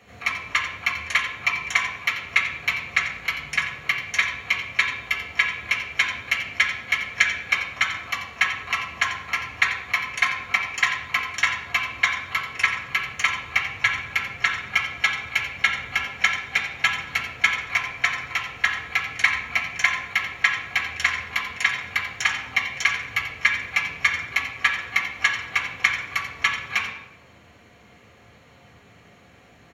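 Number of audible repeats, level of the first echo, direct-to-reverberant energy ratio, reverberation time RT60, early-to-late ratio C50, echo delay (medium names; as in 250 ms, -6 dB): 1, -11.0 dB, -0.5 dB, 0.85 s, 6.0 dB, 88 ms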